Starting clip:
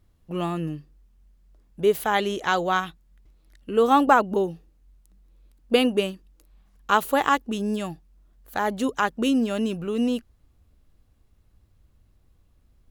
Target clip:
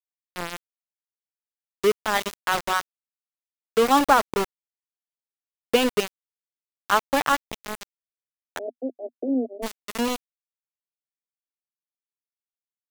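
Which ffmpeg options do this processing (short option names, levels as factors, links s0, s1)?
-filter_complex "[0:a]aeval=exprs='val(0)*gte(abs(val(0)),0.1)':c=same,asplit=3[s0][s1][s2];[s0]afade=t=out:st=8.57:d=0.02[s3];[s1]asuperpass=centerf=410:order=20:qfactor=0.9,afade=t=in:st=8.57:d=0.02,afade=t=out:st=9.62:d=0.02[s4];[s2]afade=t=in:st=9.62:d=0.02[s5];[s3][s4][s5]amix=inputs=3:normalize=0"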